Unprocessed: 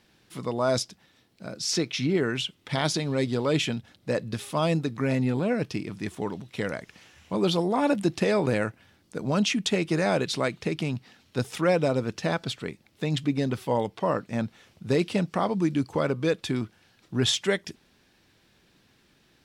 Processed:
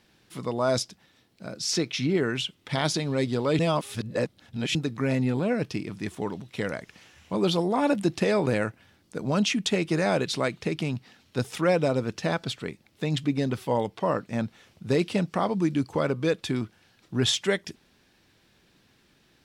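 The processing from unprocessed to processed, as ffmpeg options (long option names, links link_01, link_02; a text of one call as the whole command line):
ffmpeg -i in.wav -filter_complex "[0:a]asplit=3[link_01][link_02][link_03];[link_01]atrim=end=3.592[link_04];[link_02]atrim=start=3.588:end=4.752,asetpts=PTS-STARTPTS,areverse[link_05];[link_03]atrim=start=4.748[link_06];[link_04][link_05]acrossfade=duration=0.004:curve1=hsin:curve2=hsin[link_07];[link_07][link_06]acrossfade=duration=0.004:curve1=hsin:curve2=hsin" out.wav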